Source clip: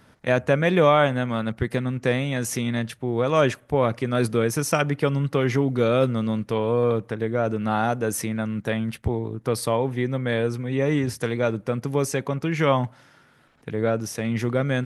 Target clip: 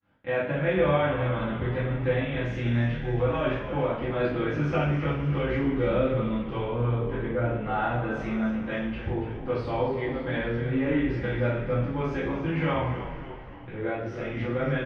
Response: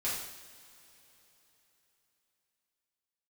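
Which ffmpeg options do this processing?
-filter_complex "[0:a]flanger=delay=20:depth=5.8:speed=0.21,alimiter=limit=0.188:level=0:latency=1:release=243,asplit=7[s0][s1][s2][s3][s4][s5][s6];[s1]adelay=281,afreqshift=-84,volume=0.282[s7];[s2]adelay=562,afreqshift=-168,volume=0.151[s8];[s3]adelay=843,afreqshift=-252,volume=0.0822[s9];[s4]adelay=1124,afreqshift=-336,volume=0.0442[s10];[s5]adelay=1405,afreqshift=-420,volume=0.024[s11];[s6]adelay=1686,afreqshift=-504,volume=0.0129[s12];[s0][s7][s8][s9][s10][s11][s12]amix=inputs=7:normalize=0,agate=range=0.0224:threshold=0.00316:ratio=3:detection=peak,lowpass=f=3100:w=0.5412,lowpass=f=3100:w=1.3066[s13];[1:a]atrim=start_sample=2205,asetrate=57330,aresample=44100[s14];[s13][s14]afir=irnorm=-1:irlink=0,volume=0.794"

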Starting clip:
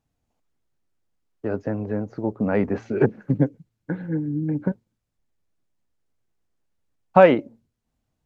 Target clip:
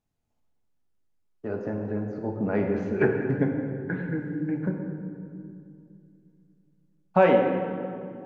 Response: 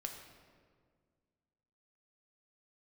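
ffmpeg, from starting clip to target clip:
-filter_complex "[0:a]asettb=1/sr,asplit=3[s0][s1][s2];[s0]atrim=end=2.994[s3];[s1]atrim=start=2.99:end=4.66,asetpts=PTS-STARTPTS,afade=t=in:d=0.004:c=qsin,afade=t=out:st=1.666:d=0.004:c=qsin,equalizer=f=2000:t=o:w=1.4:g=11[s4];[s2]atrim=start=4.656[s5];[s3][s4]acrossfade=d=0.004:c1=hsin:c2=qsin[s6];[s6][s5]acrossfade=d=0.004:c1=qsin:c2=hsin[s7];[1:a]atrim=start_sample=2205,asetrate=29106,aresample=44100[s8];[s7][s8]afir=irnorm=-1:irlink=0,volume=0.596"

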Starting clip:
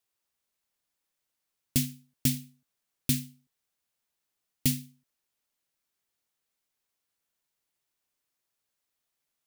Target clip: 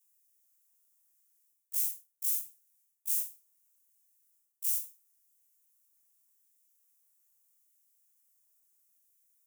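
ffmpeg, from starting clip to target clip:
-af "afftfilt=real='re':imag='-im':win_size=2048:overlap=0.75,aexciter=amount=8:drive=3.3:freq=6000,areverse,acompressor=threshold=0.0447:ratio=8,areverse,afftfilt=real='re*gte(b*sr/1024,530*pow(1600/530,0.5+0.5*sin(2*PI*0.79*pts/sr)))':imag='im*gte(b*sr/1024,530*pow(1600/530,0.5+0.5*sin(2*PI*0.79*pts/sr)))':win_size=1024:overlap=0.75,volume=0.841"

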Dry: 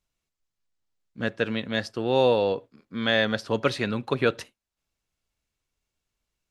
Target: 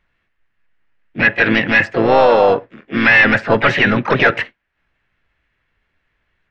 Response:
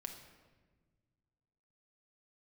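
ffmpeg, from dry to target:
-filter_complex "[0:a]lowpass=f=1800:t=q:w=5.1,apsyclip=8.91,asplit=3[s0][s1][s2];[s1]asetrate=52444,aresample=44100,atempo=0.840896,volume=0.447[s3];[s2]asetrate=66075,aresample=44100,atempo=0.66742,volume=0.447[s4];[s0][s3][s4]amix=inputs=3:normalize=0,volume=0.473"

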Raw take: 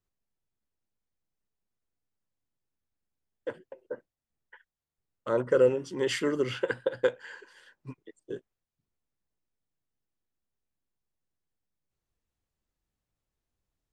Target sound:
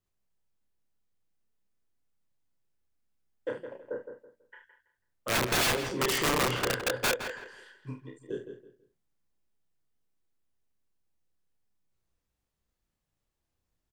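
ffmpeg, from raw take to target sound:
-filter_complex "[0:a]asplit=2[s0][s1];[s1]aecho=0:1:31|47|74:0.668|0.282|0.282[s2];[s0][s2]amix=inputs=2:normalize=0,aeval=exprs='(mod(11.9*val(0)+1,2)-1)/11.9':c=same,asplit=2[s3][s4];[s4]adelay=164,lowpass=f=3300:p=1,volume=0.376,asplit=2[s5][s6];[s6]adelay=164,lowpass=f=3300:p=1,volume=0.27,asplit=2[s7][s8];[s8]adelay=164,lowpass=f=3300:p=1,volume=0.27[s9];[s5][s7][s9]amix=inputs=3:normalize=0[s10];[s3][s10]amix=inputs=2:normalize=0"

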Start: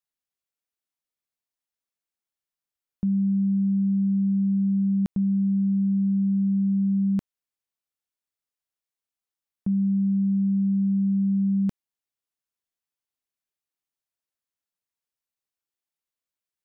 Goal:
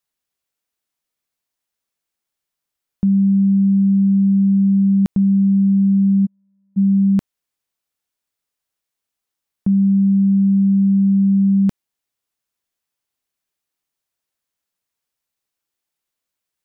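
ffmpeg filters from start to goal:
-filter_complex "[0:a]asplit=3[s0][s1][s2];[s0]afade=t=out:st=6.25:d=0.02[s3];[s1]agate=range=0.00398:threshold=0.141:ratio=16:detection=peak,afade=t=in:st=6.25:d=0.02,afade=t=out:st=6.76:d=0.02[s4];[s2]afade=t=in:st=6.76:d=0.02[s5];[s3][s4][s5]amix=inputs=3:normalize=0,volume=2.66"

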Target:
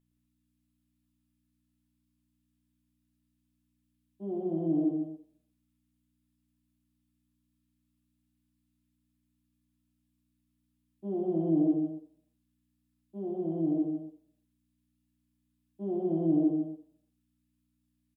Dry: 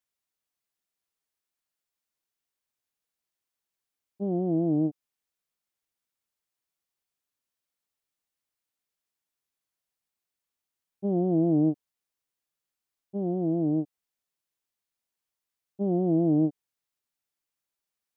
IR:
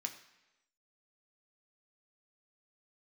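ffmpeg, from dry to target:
-filter_complex "[1:a]atrim=start_sample=2205,asetrate=61740,aresample=44100[s0];[0:a][s0]afir=irnorm=-1:irlink=0,aeval=exprs='val(0)+0.000355*(sin(2*PI*60*n/s)+sin(2*PI*2*60*n/s)/2+sin(2*PI*3*60*n/s)/3+sin(2*PI*4*60*n/s)/4+sin(2*PI*5*60*n/s)/5)':c=same,equalizer=f=62:t=o:w=1.4:g=-12.5,aecho=1:1:113.7|172|253.6:0.562|0.447|0.282"

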